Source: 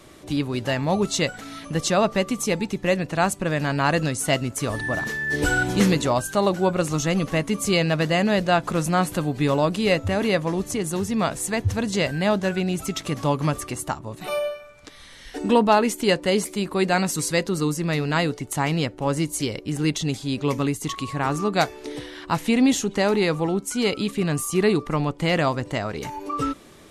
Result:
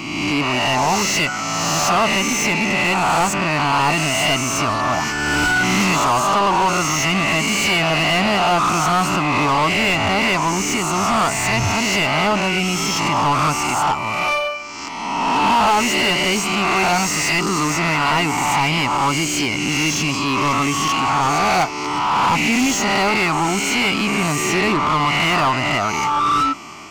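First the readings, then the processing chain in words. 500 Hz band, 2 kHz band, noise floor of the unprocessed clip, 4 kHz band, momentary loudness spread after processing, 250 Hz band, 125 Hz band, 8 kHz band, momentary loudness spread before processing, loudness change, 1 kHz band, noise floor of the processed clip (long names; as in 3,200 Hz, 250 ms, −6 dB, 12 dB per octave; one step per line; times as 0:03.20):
0.0 dB, +9.5 dB, −45 dBFS, +10.0 dB, 3 LU, +2.0 dB, +1.0 dB, +8.5 dB, 8 LU, +6.0 dB, +10.5 dB, −24 dBFS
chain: peak hold with a rise ahead of every peak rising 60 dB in 1.29 s
phaser with its sweep stopped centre 2,500 Hz, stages 8
mid-hump overdrive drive 27 dB, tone 3,400 Hz, clips at −6 dBFS
level −2.5 dB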